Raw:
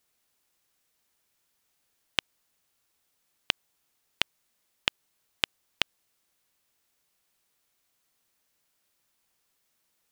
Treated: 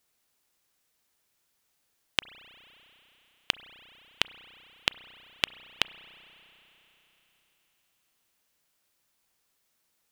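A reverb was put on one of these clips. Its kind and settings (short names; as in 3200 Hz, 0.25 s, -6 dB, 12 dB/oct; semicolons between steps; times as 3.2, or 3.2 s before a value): spring tank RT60 3.9 s, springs 32 ms, chirp 25 ms, DRR 15.5 dB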